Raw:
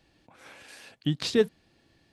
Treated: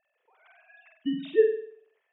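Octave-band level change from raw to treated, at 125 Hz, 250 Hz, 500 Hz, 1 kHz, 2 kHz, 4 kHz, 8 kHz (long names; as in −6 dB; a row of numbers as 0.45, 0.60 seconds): −18.0 dB, −2.0 dB, +3.5 dB, below −10 dB, −3.0 dB, −12.0 dB, below −35 dB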